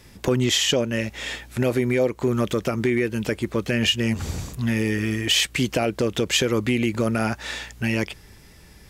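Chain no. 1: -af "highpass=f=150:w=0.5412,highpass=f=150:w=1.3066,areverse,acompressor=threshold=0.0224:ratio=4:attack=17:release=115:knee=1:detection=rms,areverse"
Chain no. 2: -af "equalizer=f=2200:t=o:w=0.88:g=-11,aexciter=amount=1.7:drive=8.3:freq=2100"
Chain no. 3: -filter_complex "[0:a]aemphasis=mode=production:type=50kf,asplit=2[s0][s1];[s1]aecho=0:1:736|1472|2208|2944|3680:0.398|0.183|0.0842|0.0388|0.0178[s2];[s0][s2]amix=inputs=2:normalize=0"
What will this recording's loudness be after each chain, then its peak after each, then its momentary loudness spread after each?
-34.0 LUFS, -21.5 LUFS, -20.5 LUFS; -19.5 dBFS, -3.0 dBFS, -3.5 dBFS; 5 LU, 11 LU, 9 LU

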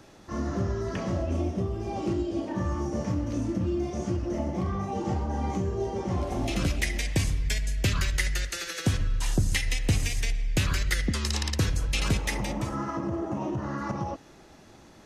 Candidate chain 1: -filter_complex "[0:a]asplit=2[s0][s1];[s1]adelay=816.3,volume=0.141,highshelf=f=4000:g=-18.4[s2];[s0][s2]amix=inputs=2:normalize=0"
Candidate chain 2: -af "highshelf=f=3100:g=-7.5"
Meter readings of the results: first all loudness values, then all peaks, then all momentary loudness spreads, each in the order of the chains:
-29.5 LUFS, -30.0 LUFS; -15.5 dBFS, -16.0 dBFS; 5 LU, 4 LU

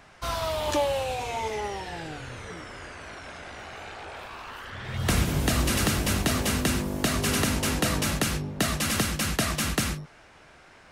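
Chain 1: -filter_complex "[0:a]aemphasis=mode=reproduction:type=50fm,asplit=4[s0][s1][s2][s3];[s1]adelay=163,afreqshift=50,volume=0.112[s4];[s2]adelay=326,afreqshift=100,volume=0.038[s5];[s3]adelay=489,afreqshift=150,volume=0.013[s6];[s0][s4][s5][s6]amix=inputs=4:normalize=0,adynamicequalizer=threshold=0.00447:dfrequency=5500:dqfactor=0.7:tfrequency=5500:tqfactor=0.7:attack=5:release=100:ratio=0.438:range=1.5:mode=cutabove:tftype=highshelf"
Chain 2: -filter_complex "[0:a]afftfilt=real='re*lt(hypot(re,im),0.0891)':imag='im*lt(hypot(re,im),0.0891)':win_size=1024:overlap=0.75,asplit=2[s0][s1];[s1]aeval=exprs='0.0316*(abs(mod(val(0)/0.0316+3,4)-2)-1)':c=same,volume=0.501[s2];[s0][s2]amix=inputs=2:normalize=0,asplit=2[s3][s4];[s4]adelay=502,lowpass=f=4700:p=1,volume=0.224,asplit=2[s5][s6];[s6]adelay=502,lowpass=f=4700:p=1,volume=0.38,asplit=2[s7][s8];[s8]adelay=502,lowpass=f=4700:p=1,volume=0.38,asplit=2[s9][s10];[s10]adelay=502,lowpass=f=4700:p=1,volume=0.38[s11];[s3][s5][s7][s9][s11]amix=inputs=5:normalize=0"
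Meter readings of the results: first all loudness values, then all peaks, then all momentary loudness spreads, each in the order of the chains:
-28.0 LUFS, -29.5 LUFS; -13.5 dBFS, -14.5 dBFS; 15 LU, 11 LU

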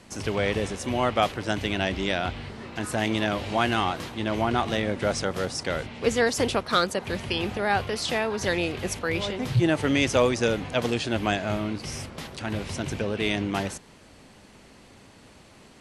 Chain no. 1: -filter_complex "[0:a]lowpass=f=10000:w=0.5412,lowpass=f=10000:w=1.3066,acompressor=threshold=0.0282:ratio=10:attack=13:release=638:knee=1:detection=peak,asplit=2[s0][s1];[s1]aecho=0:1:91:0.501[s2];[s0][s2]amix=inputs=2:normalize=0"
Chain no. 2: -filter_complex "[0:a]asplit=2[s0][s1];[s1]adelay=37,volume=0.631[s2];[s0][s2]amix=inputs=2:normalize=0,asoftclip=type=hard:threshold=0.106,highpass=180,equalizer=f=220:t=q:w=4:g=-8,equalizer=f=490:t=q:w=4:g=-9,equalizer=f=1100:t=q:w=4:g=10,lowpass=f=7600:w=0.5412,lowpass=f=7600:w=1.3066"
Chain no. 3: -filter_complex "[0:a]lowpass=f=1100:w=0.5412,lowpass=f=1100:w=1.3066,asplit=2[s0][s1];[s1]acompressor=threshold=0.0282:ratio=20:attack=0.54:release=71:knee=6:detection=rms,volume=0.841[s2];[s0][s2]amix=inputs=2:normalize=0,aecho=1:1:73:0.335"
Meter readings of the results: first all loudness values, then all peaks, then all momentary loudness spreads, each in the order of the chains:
-36.0 LUFS, -27.5 LUFS, -26.0 LUFS; -16.0 dBFS, -11.5 dBFS, -7.5 dBFS; 15 LU, 9 LU, 8 LU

